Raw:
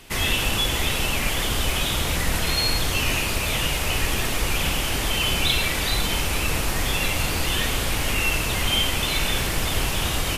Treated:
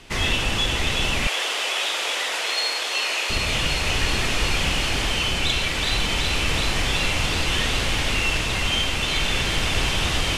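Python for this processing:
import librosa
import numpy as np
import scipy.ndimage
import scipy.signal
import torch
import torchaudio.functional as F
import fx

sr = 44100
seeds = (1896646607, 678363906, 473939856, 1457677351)

y = fx.tracing_dist(x, sr, depth_ms=0.031)
y = scipy.signal.sosfilt(scipy.signal.butter(2, 7000.0, 'lowpass', fs=sr, output='sos'), y)
y = fx.echo_wet_highpass(y, sr, ms=374, feedback_pct=82, hz=1600.0, wet_db=-6.0)
y = fx.rider(y, sr, range_db=10, speed_s=0.5)
y = fx.highpass(y, sr, hz=440.0, slope=24, at=(1.27, 3.3))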